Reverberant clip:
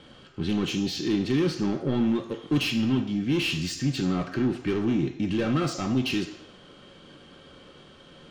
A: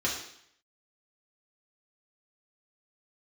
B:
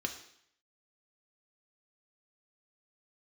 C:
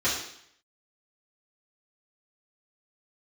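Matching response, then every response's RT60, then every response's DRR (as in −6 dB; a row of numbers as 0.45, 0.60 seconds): B; 0.70, 0.70, 0.70 seconds; −5.5, 3.5, −12.0 decibels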